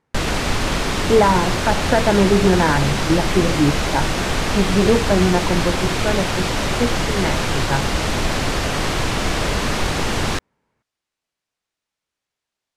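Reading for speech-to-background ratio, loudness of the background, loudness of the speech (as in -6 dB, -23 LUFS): 1.0 dB, -21.0 LUFS, -20.0 LUFS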